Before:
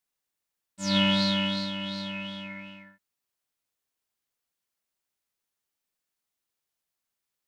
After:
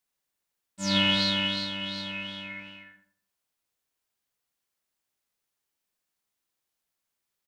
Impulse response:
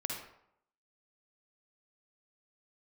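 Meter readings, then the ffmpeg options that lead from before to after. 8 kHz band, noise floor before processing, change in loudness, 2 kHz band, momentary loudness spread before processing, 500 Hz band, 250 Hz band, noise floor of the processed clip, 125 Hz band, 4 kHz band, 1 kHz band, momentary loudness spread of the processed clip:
+1.5 dB, below −85 dBFS, +0.5 dB, +2.5 dB, 17 LU, −2.5 dB, −3.5 dB, −84 dBFS, −3.0 dB, +2.0 dB, −1.0 dB, 17 LU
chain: -filter_complex "[0:a]asplit=2[link_01][link_02];[link_02]adelay=84,lowpass=frequency=2000:poles=1,volume=-7dB,asplit=2[link_03][link_04];[link_04]adelay=84,lowpass=frequency=2000:poles=1,volume=0.35,asplit=2[link_05][link_06];[link_06]adelay=84,lowpass=frequency=2000:poles=1,volume=0.35,asplit=2[link_07][link_08];[link_08]adelay=84,lowpass=frequency=2000:poles=1,volume=0.35[link_09];[link_01][link_03][link_05][link_07][link_09]amix=inputs=5:normalize=0,asplit=2[link_10][link_11];[1:a]atrim=start_sample=2205,asetrate=61740,aresample=44100[link_12];[link_11][link_12]afir=irnorm=-1:irlink=0,volume=-11dB[link_13];[link_10][link_13]amix=inputs=2:normalize=0"

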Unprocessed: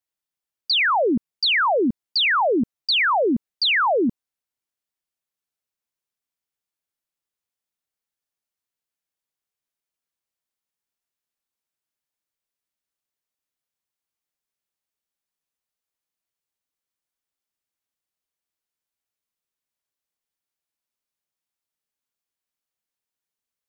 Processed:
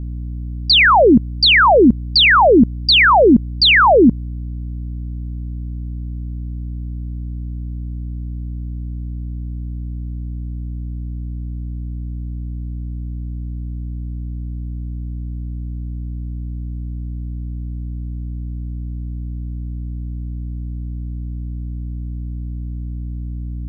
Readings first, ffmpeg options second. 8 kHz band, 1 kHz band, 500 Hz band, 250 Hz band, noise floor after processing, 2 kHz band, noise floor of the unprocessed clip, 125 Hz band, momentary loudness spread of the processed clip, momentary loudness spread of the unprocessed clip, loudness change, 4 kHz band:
can't be measured, +9.0 dB, +9.5 dB, +11.5 dB, −26 dBFS, +8.5 dB, below −85 dBFS, +26.0 dB, 19 LU, 6 LU, +9.0 dB, +8.5 dB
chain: -af "aeval=exprs='val(0)+0.0112*(sin(2*PI*60*n/s)+sin(2*PI*2*60*n/s)/2+sin(2*PI*3*60*n/s)/3+sin(2*PI*4*60*n/s)/4+sin(2*PI*5*60*n/s)/5)':channel_layout=same,lowshelf=frequency=200:gain=7.5,volume=8.5dB"

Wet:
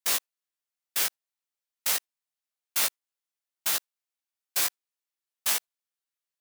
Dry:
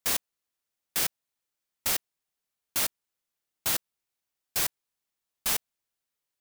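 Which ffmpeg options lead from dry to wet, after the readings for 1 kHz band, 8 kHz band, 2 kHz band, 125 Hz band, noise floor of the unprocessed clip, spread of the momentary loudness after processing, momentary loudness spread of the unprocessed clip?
+0.5 dB, +2.0 dB, +1.5 dB, below −10 dB, below −85 dBFS, 5 LU, 4 LU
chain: -af "highpass=frequency=650:poles=1,agate=range=-9dB:threshold=-36dB:ratio=16:detection=peak,alimiter=limit=-17dB:level=0:latency=1:release=55,flanger=delay=15:depth=2.1:speed=2.9,volume=6.5dB"

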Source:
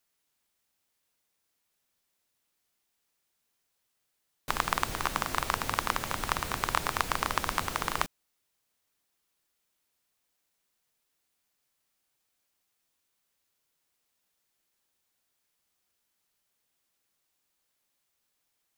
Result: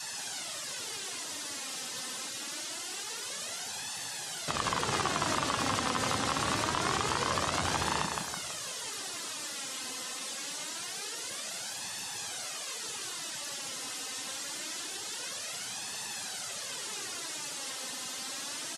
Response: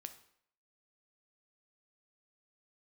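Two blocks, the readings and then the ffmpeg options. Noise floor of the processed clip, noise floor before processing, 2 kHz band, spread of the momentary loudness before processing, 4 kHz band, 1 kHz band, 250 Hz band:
−40 dBFS, −79 dBFS, +1.0 dB, 3 LU, +8.0 dB, 0.0 dB, +6.0 dB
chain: -filter_complex "[0:a]aeval=exprs='val(0)+0.5*0.0282*sgn(val(0))':channel_layout=same,highpass=frequency=87:width=0.5412,highpass=frequency=87:width=1.3066,highshelf=frequency=6100:gain=8,asplit=2[link_01][link_02];[link_02]adelay=163,lowpass=frequency=2000:poles=1,volume=-6dB,asplit=2[link_03][link_04];[link_04]adelay=163,lowpass=frequency=2000:poles=1,volume=0.51,asplit=2[link_05][link_06];[link_06]adelay=163,lowpass=frequency=2000:poles=1,volume=0.51,asplit=2[link_07][link_08];[link_08]adelay=163,lowpass=frequency=2000:poles=1,volume=0.51,asplit=2[link_09][link_10];[link_10]adelay=163,lowpass=frequency=2000:poles=1,volume=0.51,asplit=2[link_11][link_12];[link_12]adelay=163,lowpass=frequency=2000:poles=1,volume=0.51[link_13];[link_01][link_03][link_05][link_07][link_09][link_11][link_13]amix=inputs=7:normalize=0,asplit=2[link_14][link_15];[link_15]alimiter=limit=-12dB:level=0:latency=1:release=87,volume=0.5dB[link_16];[link_14][link_16]amix=inputs=2:normalize=0,asoftclip=type=tanh:threshold=-14dB,lowpass=7700,bandreject=frequency=2300:width=29,flanger=delay=1.1:depth=2.8:regen=57:speed=0.25:shape=sinusoidal,afftdn=noise_reduction=26:noise_floor=-43"

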